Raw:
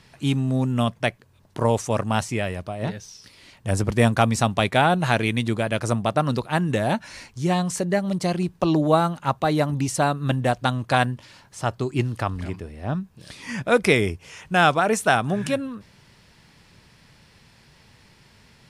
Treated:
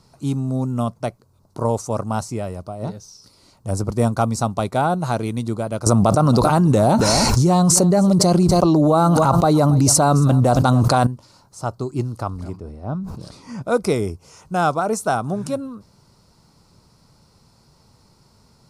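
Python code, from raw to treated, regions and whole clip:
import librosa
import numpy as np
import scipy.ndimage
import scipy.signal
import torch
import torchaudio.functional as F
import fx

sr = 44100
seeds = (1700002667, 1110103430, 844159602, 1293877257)

y = fx.chain(x, sr, fx.echo_single(ms=276, db=-21.5),
    fx.env_flatten(amount_pct=100), at=(5.86, 11.07))
y = fx.chain(y, sr, fx.lowpass(hz=3200.0, slope=6),
    fx.sustainer(db_per_s=41.0), at=(12.57, 13.62))
y = fx.band_shelf(y, sr, hz=2400.0, db=-13.5, octaves=1.3)
y = fx.notch(y, sr, hz=1700.0, q=10.0)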